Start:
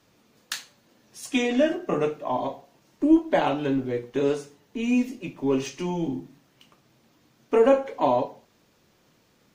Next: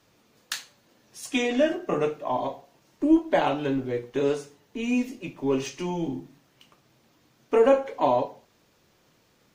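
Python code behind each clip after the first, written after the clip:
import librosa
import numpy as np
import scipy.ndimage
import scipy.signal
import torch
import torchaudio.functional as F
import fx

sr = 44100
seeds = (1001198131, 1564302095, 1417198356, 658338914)

y = fx.peak_eq(x, sr, hz=220.0, db=-3.0, octaves=1.0)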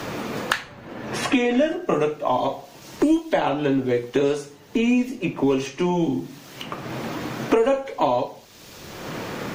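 y = fx.band_squash(x, sr, depth_pct=100)
y = y * librosa.db_to_amplitude(4.5)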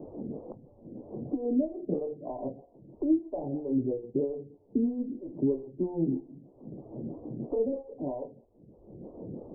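y = scipy.ndimage.gaussian_filter1d(x, 17.0, mode='constant')
y = fx.stagger_phaser(y, sr, hz=3.1)
y = y * librosa.db_to_amplitude(-2.5)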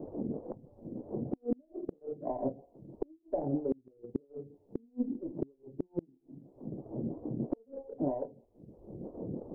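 y = fx.transient(x, sr, attack_db=3, sustain_db=-4)
y = fx.gate_flip(y, sr, shuts_db=-21.0, range_db=-35)
y = y * librosa.db_to_amplitude(1.0)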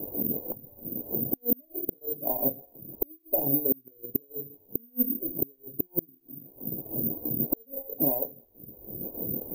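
y = (np.kron(x[::3], np.eye(3)[0]) * 3)[:len(x)]
y = y * librosa.db_to_amplitude(2.0)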